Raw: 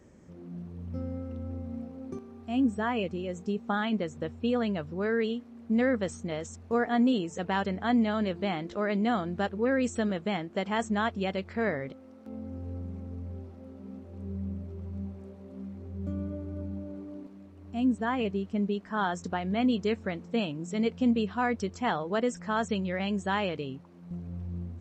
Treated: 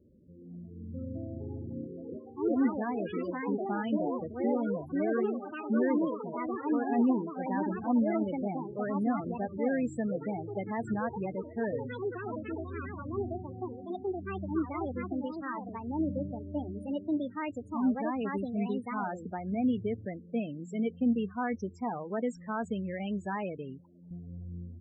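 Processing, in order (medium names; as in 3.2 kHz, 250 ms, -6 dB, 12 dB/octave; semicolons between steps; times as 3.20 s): dynamic bell 250 Hz, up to +3 dB, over -37 dBFS, Q 2; 5.98–6.84 s: level held to a coarse grid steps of 9 dB; ever faster or slower copies 403 ms, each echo +4 st, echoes 3; loudest bins only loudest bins 16; trim -5 dB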